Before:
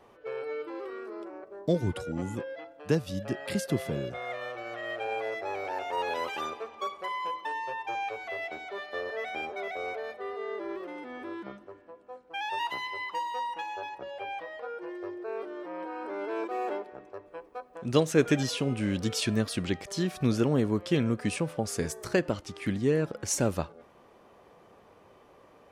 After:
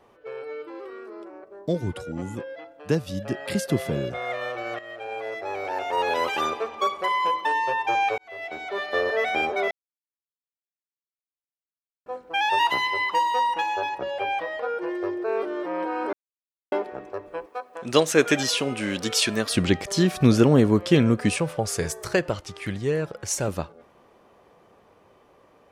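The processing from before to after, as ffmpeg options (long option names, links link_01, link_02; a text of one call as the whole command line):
ffmpeg -i in.wav -filter_complex "[0:a]asettb=1/sr,asplit=3[link_01][link_02][link_03];[link_01]atrim=end=17.464[link_04];[link_02]atrim=start=17.46:end=19.5,asetpts=PTS-STARTPTS,afade=type=in:duration=0.004:curve=qsin,afade=type=out:start_time=2.036:duration=0.004:curve=qsin,highpass=frequency=630:poles=1[link_05];[link_03]atrim=start=19.496[link_06];[link_04][link_05]acrossfade=duration=0.004:curve1=hsin:curve2=qsin[link_07];[link_07][link_06]acrossfade=duration=0.004:curve1=qsin:curve2=hsin,asettb=1/sr,asplit=3[link_08][link_09][link_10];[link_08]atrim=end=21.334[link_11];[link_09]atrim=start=21.33:end=23.48,asetpts=PTS-STARTPTS,afade=type=in:duration=0.004:curve=qsin,afade=type=out:start_time=2.146:duration=0.004:curve=qsin,equalizer=frequency=250:width_type=o:width=0.77:gain=-10[link_12];[link_10]atrim=start=23.476[link_13];[link_11][link_12]acrossfade=duration=0.004:curve1=hsin:curve2=qsin[link_14];[link_14][link_13]acrossfade=duration=0.004:curve1=qsin:curve2=hsin,asplit=7[link_15][link_16][link_17][link_18][link_19][link_20][link_21];[link_15]atrim=end=4.79,asetpts=PTS-STARTPTS,afade=type=out:start_time=4.786:duration=0.004:curve=hsin:silence=0.223872[link_22];[link_16]atrim=start=4.79:end=8.18,asetpts=PTS-STARTPTS,afade=type=in:duration=1.82:silence=0.223872,afade=type=out:start_time=3.386:duration=0.004:curve=hsin[link_23];[link_17]atrim=start=8.18:end=9.71,asetpts=PTS-STARTPTS,afade=type=in:duration=0.75,afade=type=out:start_time=1.526:duration=0.004:curve=hsin[link_24];[link_18]atrim=start=9.71:end=12.06,asetpts=PTS-STARTPTS,volume=0[link_25];[link_19]atrim=start=12.06:end=16.13,asetpts=PTS-STARTPTS,afade=type=in:duration=0.004:curve=hsin,afade=type=out:start_time=4.066:duration=0.004:curve=hsin[link_26];[link_20]atrim=start=16.13:end=16.72,asetpts=PTS-STARTPTS,volume=0[link_27];[link_21]atrim=start=16.72,asetpts=PTS-STARTPTS,afade=type=in:duration=0.004:curve=hsin[link_28];[link_22][link_23][link_24][link_25][link_26][link_27][link_28]concat=n=7:v=0:a=1,dynaudnorm=framelen=390:gausssize=21:maxgain=11dB" out.wav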